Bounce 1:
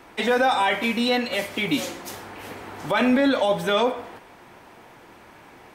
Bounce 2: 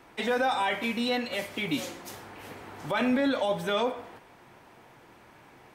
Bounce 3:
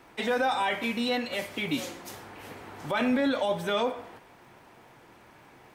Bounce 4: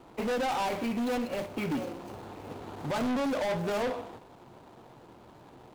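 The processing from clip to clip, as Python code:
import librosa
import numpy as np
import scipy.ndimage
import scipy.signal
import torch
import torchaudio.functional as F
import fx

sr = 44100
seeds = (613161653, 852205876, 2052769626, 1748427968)

y1 = fx.peak_eq(x, sr, hz=130.0, db=5.0, octaves=0.48)
y1 = y1 * 10.0 ** (-6.5 / 20.0)
y2 = fx.dmg_crackle(y1, sr, seeds[0], per_s=280.0, level_db=-58.0)
y3 = scipy.ndimage.median_filter(y2, 25, mode='constant')
y3 = np.clip(y3, -10.0 ** (-31.5 / 20.0), 10.0 ** (-31.5 / 20.0))
y3 = y3 * 10.0 ** (4.0 / 20.0)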